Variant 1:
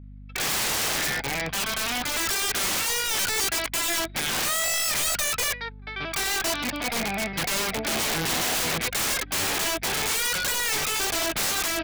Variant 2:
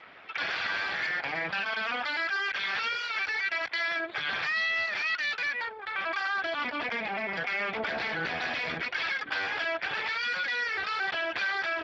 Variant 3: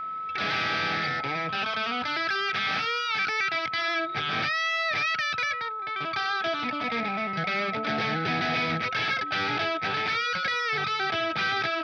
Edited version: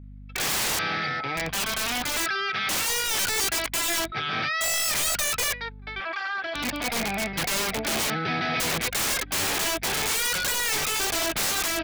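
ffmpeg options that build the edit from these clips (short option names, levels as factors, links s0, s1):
-filter_complex "[2:a]asplit=4[s0][s1][s2][s3];[0:a]asplit=6[s4][s5][s6][s7][s8][s9];[s4]atrim=end=0.792[s10];[s0]atrim=start=0.788:end=1.372[s11];[s5]atrim=start=1.368:end=2.262[s12];[s1]atrim=start=2.258:end=2.692[s13];[s6]atrim=start=2.688:end=4.122[s14];[s2]atrim=start=4.118:end=4.612[s15];[s7]atrim=start=4.608:end=6.002[s16];[1:a]atrim=start=5.998:end=6.552[s17];[s8]atrim=start=6.548:end=8.102[s18];[s3]atrim=start=8.098:end=8.602[s19];[s9]atrim=start=8.598[s20];[s10][s11]acrossfade=d=0.004:c1=hsin:c2=hsin[s21];[s21][s12]acrossfade=d=0.004:c1=hsin:c2=hsin[s22];[s22][s13]acrossfade=d=0.004:c1=hsin:c2=hsin[s23];[s23][s14]acrossfade=d=0.004:c1=hsin:c2=hsin[s24];[s24][s15]acrossfade=d=0.004:c1=hsin:c2=hsin[s25];[s25][s16]acrossfade=d=0.004:c1=hsin:c2=hsin[s26];[s26][s17]acrossfade=d=0.004:c1=hsin:c2=hsin[s27];[s27][s18]acrossfade=d=0.004:c1=hsin:c2=hsin[s28];[s28][s19]acrossfade=d=0.004:c1=hsin:c2=hsin[s29];[s29][s20]acrossfade=d=0.004:c1=hsin:c2=hsin"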